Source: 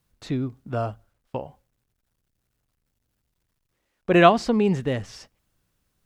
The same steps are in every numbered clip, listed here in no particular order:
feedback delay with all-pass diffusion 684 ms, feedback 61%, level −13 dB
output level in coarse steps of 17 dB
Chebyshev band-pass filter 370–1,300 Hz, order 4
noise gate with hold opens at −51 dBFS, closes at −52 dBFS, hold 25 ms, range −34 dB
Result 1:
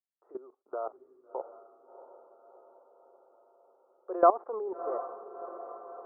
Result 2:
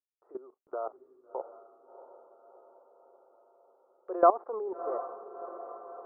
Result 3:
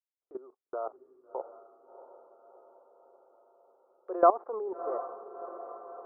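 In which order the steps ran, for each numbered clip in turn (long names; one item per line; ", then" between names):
noise gate with hold, then Chebyshev band-pass filter, then output level in coarse steps, then feedback delay with all-pass diffusion
Chebyshev band-pass filter, then noise gate with hold, then output level in coarse steps, then feedback delay with all-pass diffusion
Chebyshev band-pass filter, then output level in coarse steps, then noise gate with hold, then feedback delay with all-pass diffusion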